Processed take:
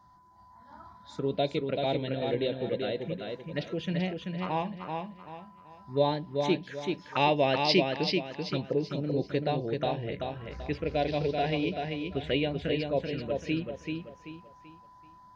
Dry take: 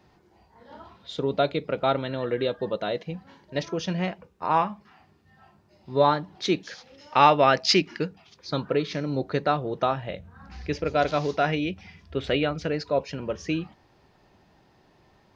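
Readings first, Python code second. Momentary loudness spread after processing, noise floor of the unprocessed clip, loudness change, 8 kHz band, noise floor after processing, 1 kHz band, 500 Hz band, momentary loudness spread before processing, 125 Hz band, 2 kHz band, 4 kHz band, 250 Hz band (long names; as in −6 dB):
12 LU, −61 dBFS, −5.0 dB, can't be measured, −55 dBFS, −8.0 dB, −3.5 dB, 17 LU, −1.5 dB, −5.0 dB, −3.5 dB, −2.0 dB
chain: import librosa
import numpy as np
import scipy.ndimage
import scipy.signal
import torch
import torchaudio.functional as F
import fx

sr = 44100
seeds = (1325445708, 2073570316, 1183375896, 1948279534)

p1 = x + 10.0 ** (-55.0 / 20.0) * np.sin(2.0 * np.pi * 1000.0 * np.arange(len(x)) / sr)
p2 = fx.spec_erase(p1, sr, start_s=8.7, length_s=0.34, low_hz=1300.0, high_hz=5000.0)
p3 = fx.env_phaser(p2, sr, low_hz=420.0, high_hz=1300.0, full_db=-23.0)
p4 = p3 + fx.echo_feedback(p3, sr, ms=385, feedback_pct=34, wet_db=-4.5, dry=0)
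y = F.gain(torch.from_numpy(p4), -2.5).numpy()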